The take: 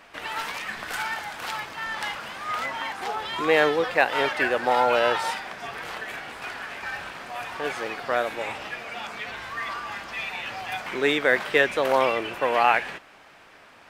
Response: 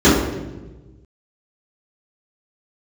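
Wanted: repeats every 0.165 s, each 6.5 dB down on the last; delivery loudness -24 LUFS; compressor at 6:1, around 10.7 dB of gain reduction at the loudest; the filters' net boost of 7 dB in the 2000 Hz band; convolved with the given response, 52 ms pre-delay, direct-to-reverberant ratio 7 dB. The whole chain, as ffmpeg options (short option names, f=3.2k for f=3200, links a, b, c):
-filter_complex "[0:a]equalizer=f=2k:t=o:g=8.5,acompressor=threshold=-21dB:ratio=6,aecho=1:1:165|330|495|660|825|990:0.473|0.222|0.105|0.0491|0.0231|0.0109,asplit=2[a][b];[1:a]atrim=start_sample=2205,adelay=52[c];[b][c]afir=irnorm=-1:irlink=0,volume=-35dB[d];[a][d]amix=inputs=2:normalize=0,volume=0.5dB"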